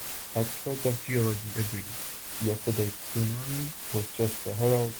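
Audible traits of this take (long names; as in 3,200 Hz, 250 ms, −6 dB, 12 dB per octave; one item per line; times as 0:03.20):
phaser sweep stages 6, 0.51 Hz, lowest notch 680–2,100 Hz
a quantiser's noise floor 6 bits, dither triangular
tremolo triangle 2.6 Hz, depth 55%
Opus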